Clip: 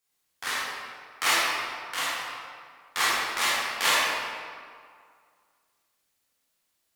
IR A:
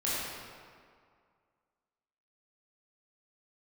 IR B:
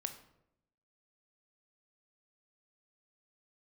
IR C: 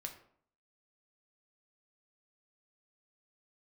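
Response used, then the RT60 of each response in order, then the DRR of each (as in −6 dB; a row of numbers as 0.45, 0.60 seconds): A; 2.1, 0.80, 0.60 seconds; −9.5, 7.0, 3.0 decibels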